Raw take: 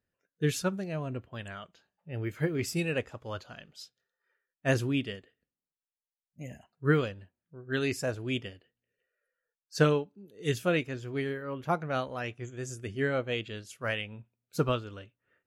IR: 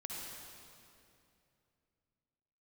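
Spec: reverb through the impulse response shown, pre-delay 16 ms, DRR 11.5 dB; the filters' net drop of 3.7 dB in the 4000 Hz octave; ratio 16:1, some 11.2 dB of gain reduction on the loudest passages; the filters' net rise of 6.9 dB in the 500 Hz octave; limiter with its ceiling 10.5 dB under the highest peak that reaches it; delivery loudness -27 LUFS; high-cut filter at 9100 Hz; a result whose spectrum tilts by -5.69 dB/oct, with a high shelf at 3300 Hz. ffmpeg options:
-filter_complex "[0:a]lowpass=9.1k,equalizer=f=500:t=o:g=8,highshelf=f=3.3k:g=4,equalizer=f=4k:t=o:g=-8.5,acompressor=threshold=-24dB:ratio=16,alimiter=level_in=1.5dB:limit=-24dB:level=0:latency=1,volume=-1.5dB,asplit=2[a][b];[1:a]atrim=start_sample=2205,adelay=16[c];[b][c]afir=irnorm=-1:irlink=0,volume=-11dB[d];[a][d]amix=inputs=2:normalize=0,volume=9dB"

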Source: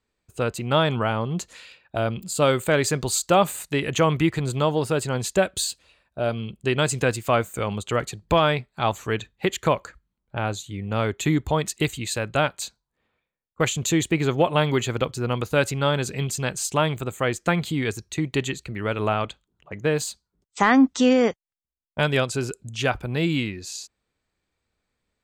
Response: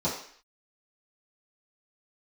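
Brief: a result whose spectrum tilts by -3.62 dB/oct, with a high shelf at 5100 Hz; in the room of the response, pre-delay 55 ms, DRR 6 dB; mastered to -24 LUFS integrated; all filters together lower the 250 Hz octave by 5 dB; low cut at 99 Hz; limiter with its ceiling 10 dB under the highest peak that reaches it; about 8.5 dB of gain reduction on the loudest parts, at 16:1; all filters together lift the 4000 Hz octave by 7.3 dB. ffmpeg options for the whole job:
-filter_complex "[0:a]highpass=99,equalizer=f=250:t=o:g=-6.5,equalizer=f=4k:t=o:g=6.5,highshelf=f=5.1k:g=7,acompressor=threshold=-22dB:ratio=16,alimiter=limit=-18dB:level=0:latency=1,asplit=2[a][b];[1:a]atrim=start_sample=2205,adelay=55[c];[b][c]afir=irnorm=-1:irlink=0,volume=-15.5dB[d];[a][d]amix=inputs=2:normalize=0,volume=5dB"

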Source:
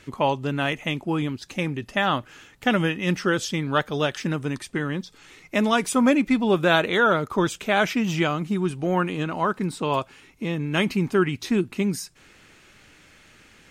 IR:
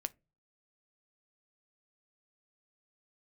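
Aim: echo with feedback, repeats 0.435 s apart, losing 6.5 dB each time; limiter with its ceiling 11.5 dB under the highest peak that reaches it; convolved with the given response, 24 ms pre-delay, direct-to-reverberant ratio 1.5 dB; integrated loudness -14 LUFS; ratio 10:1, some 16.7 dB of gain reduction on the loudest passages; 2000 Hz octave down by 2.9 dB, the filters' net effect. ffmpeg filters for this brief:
-filter_complex "[0:a]equalizer=f=2k:t=o:g=-4,acompressor=threshold=-33dB:ratio=10,alimiter=level_in=8.5dB:limit=-24dB:level=0:latency=1,volume=-8.5dB,aecho=1:1:435|870|1305|1740|2175|2610:0.473|0.222|0.105|0.0491|0.0231|0.0109,asplit=2[a][b];[1:a]atrim=start_sample=2205,adelay=24[c];[b][c]afir=irnorm=-1:irlink=0,volume=-0.5dB[d];[a][d]amix=inputs=2:normalize=0,volume=24.5dB"

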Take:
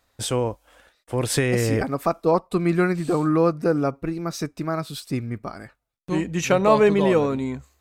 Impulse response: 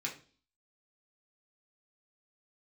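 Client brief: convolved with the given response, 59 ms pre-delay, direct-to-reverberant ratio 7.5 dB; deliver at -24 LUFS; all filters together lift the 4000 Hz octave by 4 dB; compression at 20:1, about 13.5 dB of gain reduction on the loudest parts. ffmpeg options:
-filter_complex "[0:a]equalizer=f=4k:t=o:g=5,acompressor=threshold=-25dB:ratio=20,asplit=2[a][b];[1:a]atrim=start_sample=2205,adelay=59[c];[b][c]afir=irnorm=-1:irlink=0,volume=-9.5dB[d];[a][d]amix=inputs=2:normalize=0,volume=6dB"

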